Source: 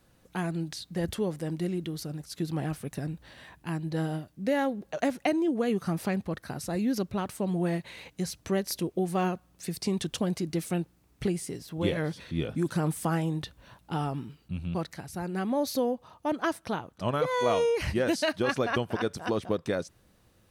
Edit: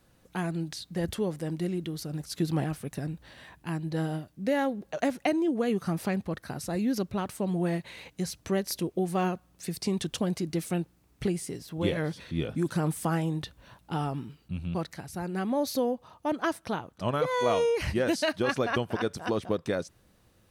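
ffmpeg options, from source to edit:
ffmpeg -i in.wav -filter_complex "[0:a]asplit=3[link_01][link_02][link_03];[link_01]atrim=end=2.132[link_04];[link_02]atrim=start=2.128:end=2.642,asetpts=PTS-STARTPTS,volume=3.5dB[link_05];[link_03]atrim=start=2.638[link_06];[link_04][link_05]acrossfade=duration=0.004:curve1=hsin:curve2=hsin[link_07];[link_07][link_06]acrossfade=duration=0.004:curve1=hsin:curve2=hsin" out.wav

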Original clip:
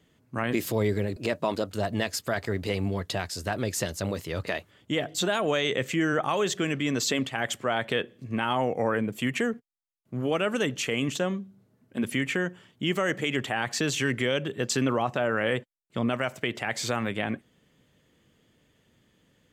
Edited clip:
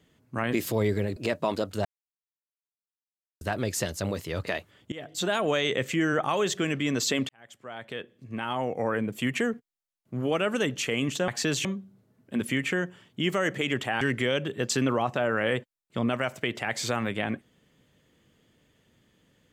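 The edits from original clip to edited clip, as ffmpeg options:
ffmpeg -i in.wav -filter_complex "[0:a]asplit=8[link_01][link_02][link_03][link_04][link_05][link_06][link_07][link_08];[link_01]atrim=end=1.85,asetpts=PTS-STARTPTS,afade=type=out:start_time=1.846:duration=0.004:curve=hsin[link_09];[link_02]atrim=start=1.85:end=3.41,asetpts=PTS-STARTPTS,volume=0[link_10];[link_03]atrim=start=3.41:end=4.92,asetpts=PTS-STARTPTS,afade=type=in:duration=0.004:curve=hsin,afade=type=out:start_time=1.506:duration=0.004:curve=hsin:silence=0.112202[link_11];[link_04]atrim=start=4.92:end=7.29,asetpts=PTS-STARTPTS,afade=type=in:duration=0.41:silence=0.112202,afade=type=out:start_time=2.366:duration=0.004:curve=hsin[link_12];[link_05]atrim=start=7.29:end=11.282,asetpts=PTS-STARTPTS,afade=type=in:duration=1.96[link_13];[link_06]atrim=start=13.638:end=14.012[link_14];[link_07]atrim=start=11.278:end=13.642[link_15];[link_08]atrim=start=14.008[link_16];[link_09][link_10][link_11][link_12][link_13]concat=n=5:v=0:a=1[link_17];[link_17][link_14]acrossfade=duration=0.004:curve1=hsin:curve2=hsin[link_18];[link_18][link_15]acrossfade=duration=0.004:curve1=hsin:curve2=hsin[link_19];[link_19][link_16]acrossfade=duration=0.004:curve1=hsin:curve2=hsin" out.wav

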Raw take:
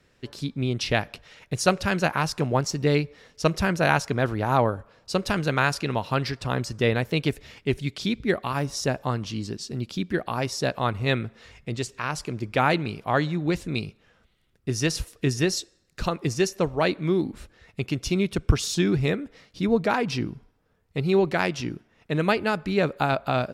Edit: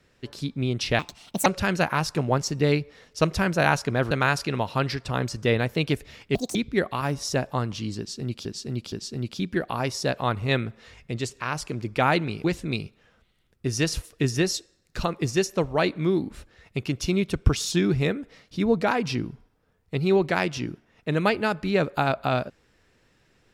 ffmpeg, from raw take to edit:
ffmpeg -i in.wav -filter_complex "[0:a]asplit=9[link_01][link_02][link_03][link_04][link_05][link_06][link_07][link_08][link_09];[link_01]atrim=end=0.994[link_10];[link_02]atrim=start=0.99:end=1.69,asetpts=PTS-STARTPTS,asetrate=65709,aresample=44100,atrim=end_sample=20718,asetpts=PTS-STARTPTS[link_11];[link_03]atrim=start=1.686:end=4.342[link_12];[link_04]atrim=start=5.468:end=7.714[link_13];[link_05]atrim=start=7.71:end=8.07,asetpts=PTS-STARTPTS,asetrate=78498,aresample=44100,atrim=end_sample=8919,asetpts=PTS-STARTPTS[link_14];[link_06]atrim=start=8.066:end=9.972[link_15];[link_07]atrim=start=9.498:end=9.972[link_16];[link_08]atrim=start=9.498:end=13.022[link_17];[link_09]atrim=start=13.468[link_18];[link_10][link_11]acrossfade=duration=0.004:curve1=hsin:curve2=hsin[link_19];[link_19][link_12]acrossfade=duration=0.004:curve1=hsin:curve2=hsin[link_20];[link_20][link_13]acrossfade=duration=0.004:curve1=hsin:curve2=hsin[link_21];[link_21][link_14]acrossfade=duration=0.004:curve1=hsin:curve2=hsin[link_22];[link_22][link_15]acrossfade=duration=0.004:curve1=hsin:curve2=hsin[link_23];[link_23][link_16]acrossfade=duration=0.004:curve1=hsin:curve2=hsin[link_24];[link_24][link_17]acrossfade=duration=0.004:curve1=hsin:curve2=hsin[link_25];[link_25][link_18]acrossfade=duration=0.004:curve1=hsin:curve2=hsin" out.wav

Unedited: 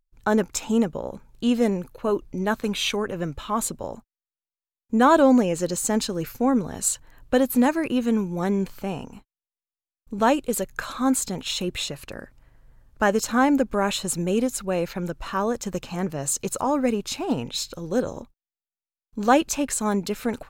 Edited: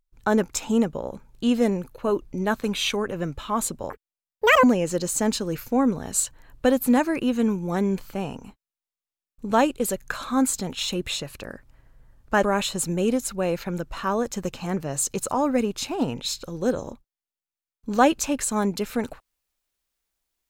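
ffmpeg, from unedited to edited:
ffmpeg -i in.wav -filter_complex "[0:a]asplit=4[link_01][link_02][link_03][link_04];[link_01]atrim=end=3.904[link_05];[link_02]atrim=start=3.9:end=5.32,asetpts=PTS-STARTPTS,asetrate=85113,aresample=44100[link_06];[link_03]atrim=start=5.316:end=13.112[link_07];[link_04]atrim=start=13.718[link_08];[link_05][link_06]acrossfade=duration=0.004:curve1=hsin:curve2=hsin[link_09];[link_09][link_07]acrossfade=duration=0.004:curve1=hsin:curve2=hsin[link_10];[link_10][link_08]acrossfade=duration=0.004:curve1=hsin:curve2=hsin" out.wav

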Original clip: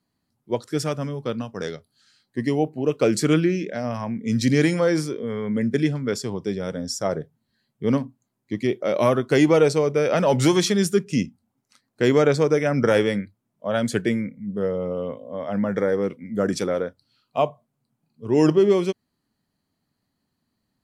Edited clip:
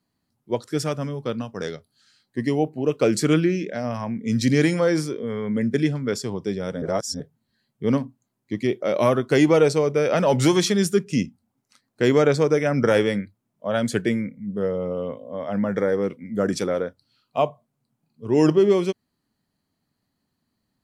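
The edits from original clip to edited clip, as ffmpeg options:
ffmpeg -i in.wav -filter_complex "[0:a]asplit=3[link_01][link_02][link_03];[link_01]atrim=end=6.822[link_04];[link_02]atrim=start=6.818:end=7.202,asetpts=PTS-STARTPTS,areverse[link_05];[link_03]atrim=start=7.198[link_06];[link_04][link_05]acrossfade=duration=0.004:curve1=hsin:curve2=hsin[link_07];[link_07][link_06]acrossfade=duration=0.004:curve1=hsin:curve2=hsin" out.wav

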